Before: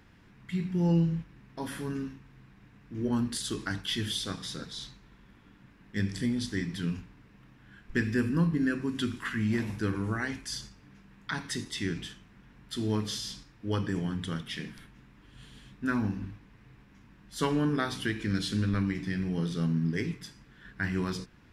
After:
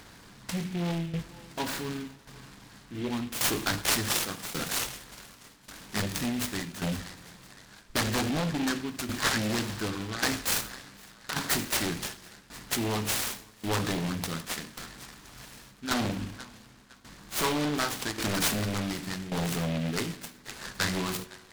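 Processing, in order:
on a send: feedback echo with a band-pass in the loop 510 ms, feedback 79%, band-pass 2,200 Hz, level −18.5 dB
on the sum: shaped tremolo saw down 0.88 Hz, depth 80%
in parallel at −7.5 dB: sine wavefolder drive 15 dB, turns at −14.5 dBFS
on the sum: low-shelf EQ 500 Hz −9.5 dB
spring reverb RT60 1.7 s, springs 57 ms, chirp 70 ms, DRR 17 dB
short delay modulated by noise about 2,400 Hz, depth 0.1 ms

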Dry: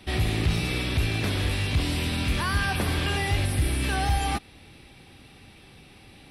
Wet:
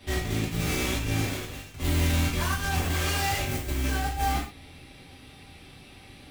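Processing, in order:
stylus tracing distortion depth 0.21 ms
0:02.90–0:03.42: low-shelf EQ 410 Hz −8.5 dB
compressor whose output falls as the input rises −27 dBFS, ratio −0.5
0:01.20–0:01.74: fade out
reverb whose tail is shaped and stops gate 150 ms falling, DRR −5 dB
level −6.5 dB

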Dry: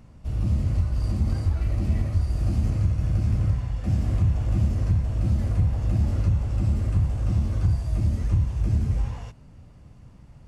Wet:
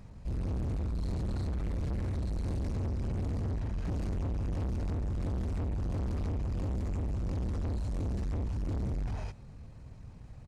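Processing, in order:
gain into a clipping stage and back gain 31 dB
pitch shifter −2 semitones

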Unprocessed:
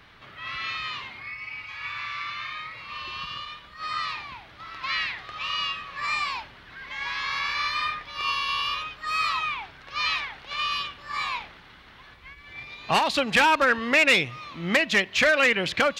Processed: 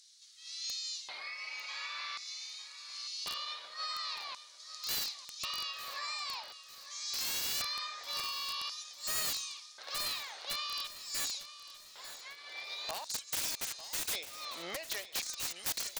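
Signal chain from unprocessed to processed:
auto-filter high-pass square 0.46 Hz 570–6,800 Hz
downward compressor 12 to 1, threshold −34 dBFS, peak gain reduction 21 dB
flat-topped bell 6,200 Hz +15 dB
wrap-around overflow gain 22 dB
on a send: repeating echo 899 ms, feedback 41%, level −14 dB
on the sum: level −5.5 dB

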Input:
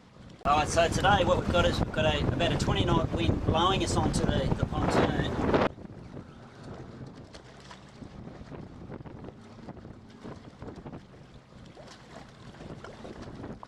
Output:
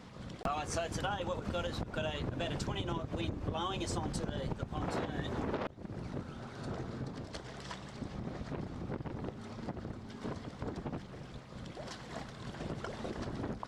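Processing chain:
downward compressor 10 to 1, threshold −36 dBFS, peak gain reduction 18 dB
level +3 dB

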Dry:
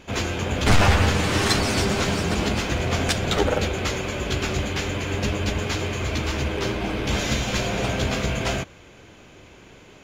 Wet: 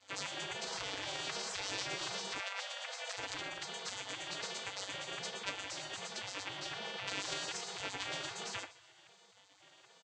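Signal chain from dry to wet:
vocoder with an arpeggio as carrier minor triad, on G3, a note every 259 ms
brickwall limiter −21 dBFS, peak gain reduction 11 dB
on a send: repeating echo 121 ms, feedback 44%, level −16 dB
on the sum: gate on every frequency bin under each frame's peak −25 dB weak
0:02.40–0:03.17: Chebyshev high-pass with heavy ripple 480 Hz, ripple 3 dB
level +4.5 dB

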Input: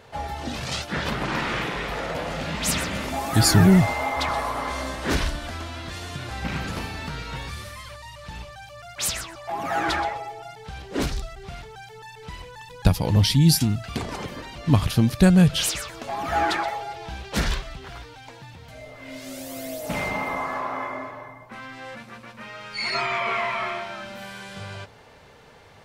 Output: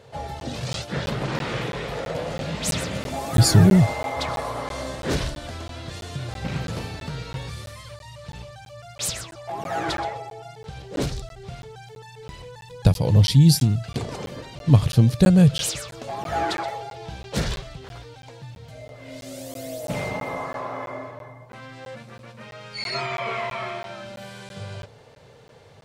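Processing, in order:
octave-band graphic EQ 125/500/4,000/8,000 Hz +12/+9/+4/+5 dB
regular buffer underruns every 0.33 s, samples 512, zero, from 0:00.40
level −6 dB

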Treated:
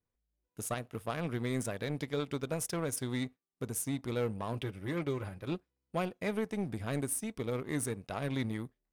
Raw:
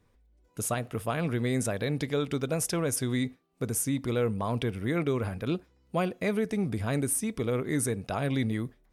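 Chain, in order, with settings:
power curve on the samples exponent 1.4
0:04.53–0:05.52: notch comb filter 230 Hz
level −3.5 dB

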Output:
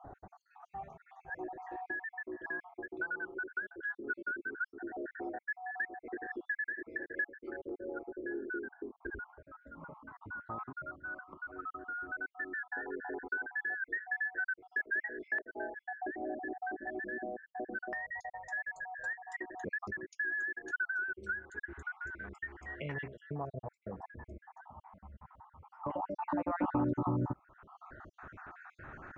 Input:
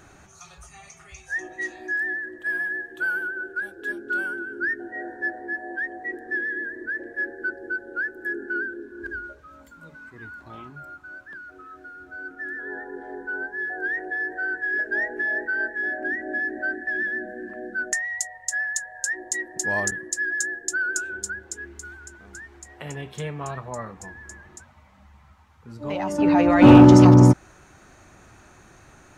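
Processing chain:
time-frequency cells dropped at random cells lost 49%
auto-filter low-pass saw up 0.13 Hz 750–1,900 Hz
downward compressor 3 to 1, threshold −38 dBFS, peak gain reduction 23 dB

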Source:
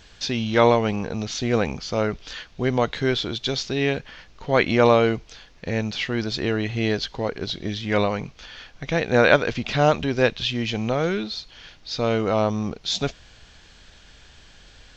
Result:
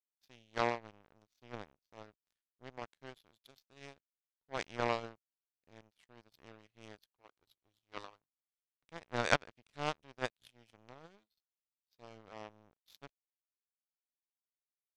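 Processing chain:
0:07.12–0:08.85: drawn EQ curve 130 Hz 0 dB, 200 Hz −13 dB, 300 Hz 0 dB, 590 Hz −5 dB, 1,200 Hz +11 dB, 1,800 Hz −8 dB, 2,900 Hz +1 dB
power curve on the samples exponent 3
level −6 dB

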